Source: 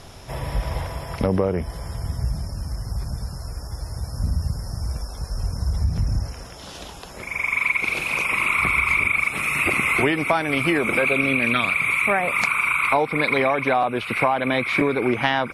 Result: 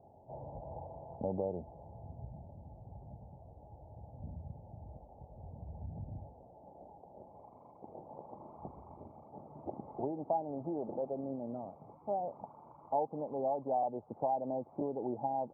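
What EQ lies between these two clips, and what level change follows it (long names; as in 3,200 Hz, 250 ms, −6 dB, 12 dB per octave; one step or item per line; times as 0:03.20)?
Chebyshev low-pass with heavy ripple 870 Hz, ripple 3 dB
first difference
parametric band 89 Hz +9 dB 2 octaves
+10.5 dB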